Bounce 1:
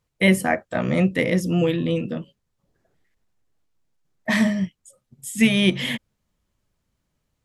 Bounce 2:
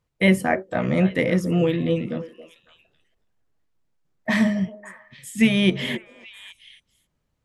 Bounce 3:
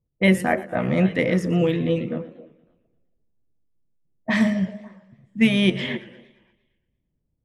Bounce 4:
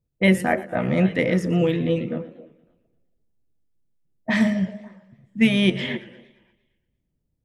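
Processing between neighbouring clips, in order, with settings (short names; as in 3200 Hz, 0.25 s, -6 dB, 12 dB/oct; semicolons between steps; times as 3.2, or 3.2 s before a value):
high shelf 4100 Hz -6.5 dB; delay with a stepping band-pass 0.275 s, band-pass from 480 Hz, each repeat 1.4 oct, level -10 dB
low-pass opened by the level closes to 380 Hz, open at -15.5 dBFS; warbling echo 0.115 s, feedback 52%, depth 174 cents, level -18 dB
notch 1100 Hz, Q 17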